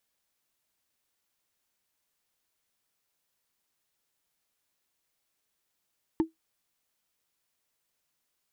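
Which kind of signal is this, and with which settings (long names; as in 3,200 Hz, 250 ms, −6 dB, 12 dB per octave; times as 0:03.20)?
struck wood, lowest mode 323 Hz, decay 0.14 s, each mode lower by 10 dB, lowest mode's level −17 dB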